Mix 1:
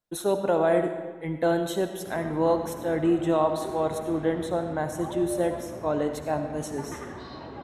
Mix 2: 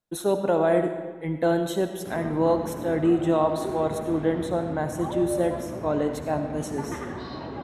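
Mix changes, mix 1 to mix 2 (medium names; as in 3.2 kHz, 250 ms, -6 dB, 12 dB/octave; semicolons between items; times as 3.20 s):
background +3.5 dB; master: add peaking EQ 200 Hz +3 dB 2 oct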